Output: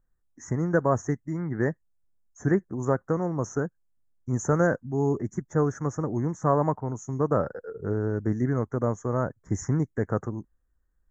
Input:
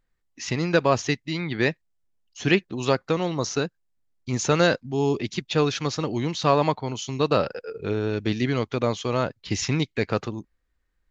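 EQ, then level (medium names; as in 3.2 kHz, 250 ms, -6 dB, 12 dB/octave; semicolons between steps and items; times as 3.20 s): inverse Chebyshev band-stop 2.4–4.8 kHz, stop band 40 dB; bass shelf 200 Hz +6.5 dB; -4.0 dB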